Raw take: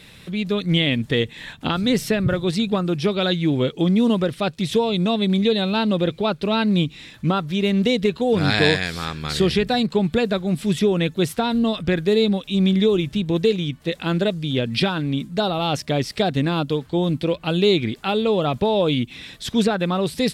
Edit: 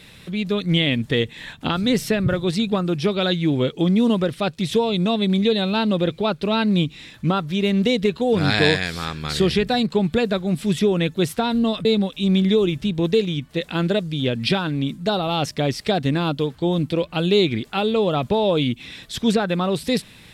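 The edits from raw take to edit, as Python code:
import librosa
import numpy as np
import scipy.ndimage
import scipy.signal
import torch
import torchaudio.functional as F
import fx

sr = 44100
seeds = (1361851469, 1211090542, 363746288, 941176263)

y = fx.edit(x, sr, fx.cut(start_s=11.85, length_s=0.31), tone=tone)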